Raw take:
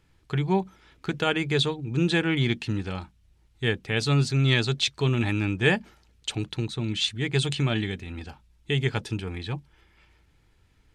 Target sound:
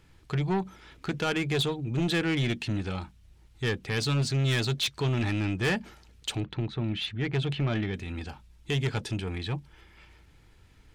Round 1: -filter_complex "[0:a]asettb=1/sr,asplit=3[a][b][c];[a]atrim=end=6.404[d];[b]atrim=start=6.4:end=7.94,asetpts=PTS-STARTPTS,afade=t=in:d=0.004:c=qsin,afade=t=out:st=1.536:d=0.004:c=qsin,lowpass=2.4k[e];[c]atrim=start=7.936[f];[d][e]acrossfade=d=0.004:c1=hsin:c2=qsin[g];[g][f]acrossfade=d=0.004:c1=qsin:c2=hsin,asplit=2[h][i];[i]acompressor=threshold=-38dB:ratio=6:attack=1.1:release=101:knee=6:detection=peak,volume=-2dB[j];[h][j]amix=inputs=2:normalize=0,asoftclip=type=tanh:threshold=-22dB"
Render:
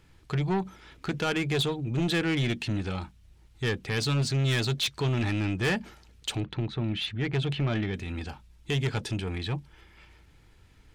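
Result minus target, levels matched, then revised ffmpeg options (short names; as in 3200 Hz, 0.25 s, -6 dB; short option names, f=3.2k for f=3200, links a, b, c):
compressor: peak gain reduction -7 dB
-filter_complex "[0:a]asettb=1/sr,asplit=3[a][b][c];[a]atrim=end=6.404[d];[b]atrim=start=6.4:end=7.94,asetpts=PTS-STARTPTS,afade=t=in:d=0.004:c=qsin,afade=t=out:st=1.536:d=0.004:c=qsin,lowpass=2.4k[e];[c]atrim=start=7.936[f];[d][e]acrossfade=d=0.004:c1=hsin:c2=qsin[g];[g][f]acrossfade=d=0.004:c1=qsin:c2=hsin,asplit=2[h][i];[i]acompressor=threshold=-46.5dB:ratio=6:attack=1.1:release=101:knee=6:detection=peak,volume=-2dB[j];[h][j]amix=inputs=2:normalize=0,asoftclip=type=tanh:threshold=-22dB"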